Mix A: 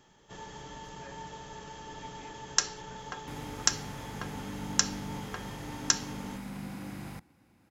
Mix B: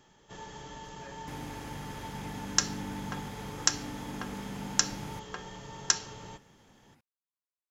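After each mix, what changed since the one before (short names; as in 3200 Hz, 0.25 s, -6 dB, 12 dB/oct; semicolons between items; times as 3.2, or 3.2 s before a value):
second sound: entry -2.00 s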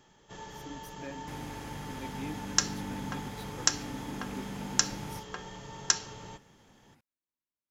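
speech: remove band-pass 1200 Hz, Q 1.4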